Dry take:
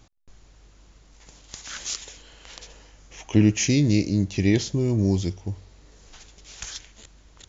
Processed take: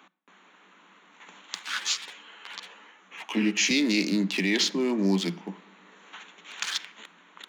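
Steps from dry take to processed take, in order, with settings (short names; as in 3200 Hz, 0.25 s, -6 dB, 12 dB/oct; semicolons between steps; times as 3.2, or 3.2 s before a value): Wiener smoothing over 9 samples; band shelf 2000 Hz +11 dB 2.6 oct; shoebox room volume 2100 m³, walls furnished, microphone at 0.35 m; limiter -12.5 dBFS, peak gain reduction 8 dB; Chebyshev high-pass 170 Hz, order 10; high shelf 6100 Hz +9 dB; 1.59–3.71 ensemble effect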